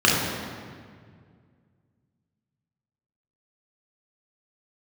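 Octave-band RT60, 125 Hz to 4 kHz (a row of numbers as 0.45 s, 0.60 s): 2.9 s, 2.5 s, 2.1 s, 1.8 s, 1.7 s, 1.4 s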